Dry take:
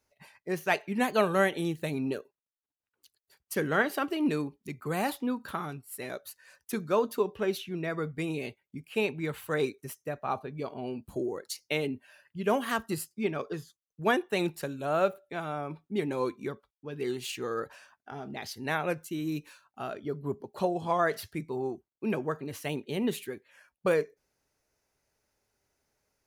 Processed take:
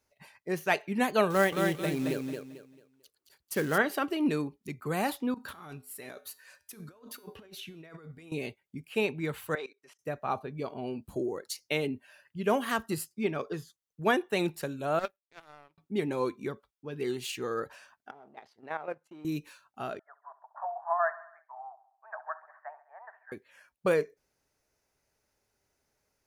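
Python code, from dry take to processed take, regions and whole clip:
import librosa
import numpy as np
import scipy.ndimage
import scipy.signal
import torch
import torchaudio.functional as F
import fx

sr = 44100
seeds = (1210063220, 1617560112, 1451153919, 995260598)

y = fx.chain(x, sr, fx.quant_float(bits=2),
    fx.echo_feedback(ms=222, feedback_pct=29, wet_db=-5.0), at=(1.3, 3.78))
y = fx.chain(y, sr, fx.low_shelf(hz=500.0, db=-4.0),
    fx.over_compress(threshold_db=-43.0, ratio=-1.0),
    fx.comb_fb(f0_hz=85.0, decay_s=0.5, harmonics='odd', damping=0.0, mix_pct=50), at=(5.34, 8.32))
y = fx.chain(y, sr, fx.bandpass_edges(low_hz=600.0, high_hz=4500.0),
    fx.level_steps(step_db=19), at=(9.55, 9.99))
y = fx.chain(y, sr, fx.peak_eq(hz=190.0, db=-11.5, octaves=2.4),
    fx.power_curve(exponent=2.0), at=(14.99, 15.78))
y = fx.chain(y, sr, fx.law_mismatch(coded='A'),
    fx.level_steps(step_db=10),
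    fx.bandpass_q(hz=760.0, q=1.0), at=(18.11, 19.25))
y = fx.chain(y, sr, fx.cheby1_bandpass(low_hz=640.0, high_hz=1800.0, order=5),
    fx.echo_feedback(ms=68, feedback_pct=57, wet_db=-17), at=(19.99, 23.32))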